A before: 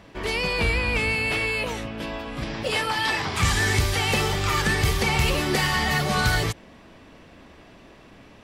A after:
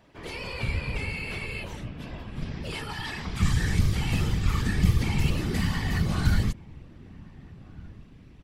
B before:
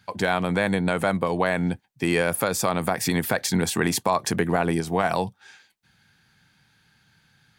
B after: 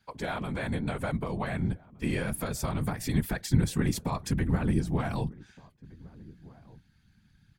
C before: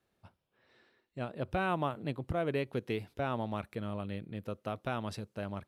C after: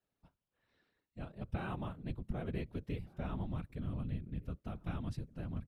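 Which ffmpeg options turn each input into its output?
-filter_complex "[0:a]afftfilt=real='hypot(re,im)*cos(2*PI*random(0))':imag='hypot(re,im)*sin(2*PI*random(1))':win_size=512:overlap=0.75,asplit=2[link_01][link_02];[link_02]adelay=1516,volume=-22dB,highshelf=frequency=4000:gain=-34.1[link_03];[link_01][link_03]amix=inputs=2:normalize=0,asubboost=boost=6:cutoff=230,volume=-4.5dB"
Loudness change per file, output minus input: −5.0, −6.5, −5.5 LU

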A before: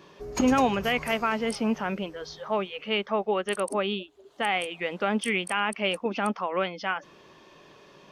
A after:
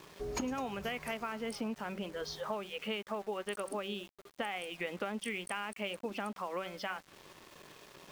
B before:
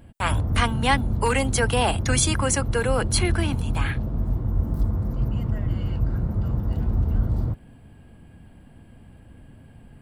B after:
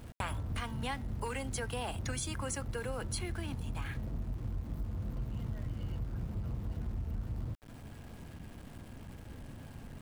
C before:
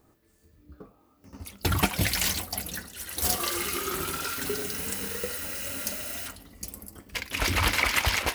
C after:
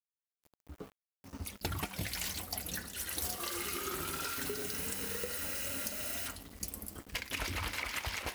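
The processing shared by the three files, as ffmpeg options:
-af "acompressor=threshold=-34dB:ratio=10,bandreject=frequency=191.9:width_type=h:width=4,bandreject=frequency=383.8:width_type=h:width=4,bandreject=frequency=575.7:width_type=h:width=4,bandreject=frequency=767.6:width_type=h:width=4,bandreject=frequency=959.5:width_type=h:width=4,bandreject=frequency=1151.4:width_type=h:width=4,bandreject=frequency=1343.3:width_type=h:width=4,bandreject=frequency=1535.2:width_type=h:width=4,bandreject=frequency=1727.1:width_type=h:width=4,bandreject=frequency=1919:width_type=h:width=4,bandreject=frequency=2110.9:width_type=h:width=4,aeval=exprs='val(0)*gte(abs(val(0)),0.00299)':channel_layout=same"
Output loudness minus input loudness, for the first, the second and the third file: −11.0, −15.5, −9.0 LU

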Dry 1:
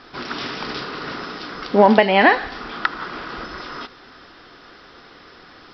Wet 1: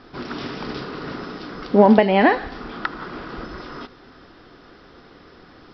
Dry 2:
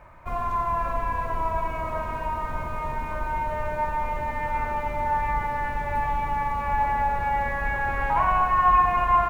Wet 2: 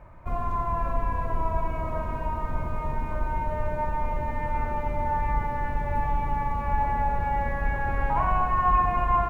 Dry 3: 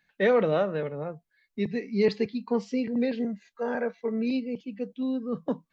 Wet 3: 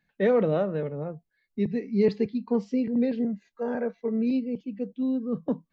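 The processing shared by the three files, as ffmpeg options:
-af "tiltshelf=frequency=650:gain=5.5,volume=-1.5dB"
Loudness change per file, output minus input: 0.0, −2.5, +1.0 LU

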